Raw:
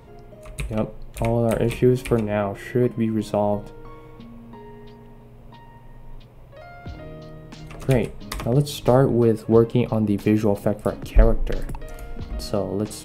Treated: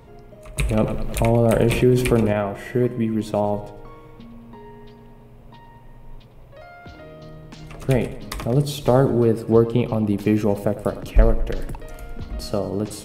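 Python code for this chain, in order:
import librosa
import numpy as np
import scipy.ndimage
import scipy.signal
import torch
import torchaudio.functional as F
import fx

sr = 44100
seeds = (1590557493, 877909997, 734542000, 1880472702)

y = fx.low_shelf(x, sr, hz=190.0, db=-9.0, at=(6.65, 7.22))
y = fx.echo_feedback(y, sr, ms=104, feedback_pct=49, wet_db=-15)
y = fx.env_flatten(y, sr, amount_pct=50, at=(0.57, 2.33))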